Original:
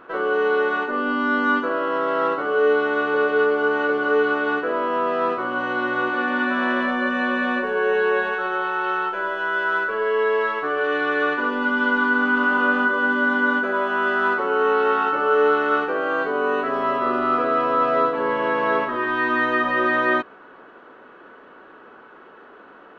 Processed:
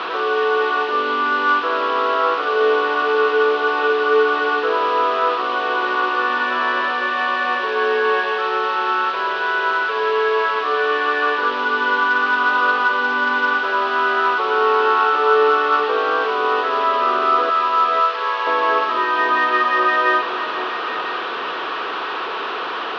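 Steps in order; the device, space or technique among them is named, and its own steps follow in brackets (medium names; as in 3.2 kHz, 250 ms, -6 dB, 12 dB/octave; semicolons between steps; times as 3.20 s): digital answering machine (band-pass 360–3100 Hz; one-bit delta coder 32 kbps, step -23 dBFS; cabinet simulation 500–3100 Hz, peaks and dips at 580 Hz -10 dB, 830 Hz -4 dB, 1.5 kHz -6 dB, 2.1 kHz -9 dB); 17.50–18.47 s: high-pass 850 Hz 12 dB/octave; echo whose repeats swap between lows and highs 500 ms, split 810 Hz, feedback 64%, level -8.5 dB; trim +9 dB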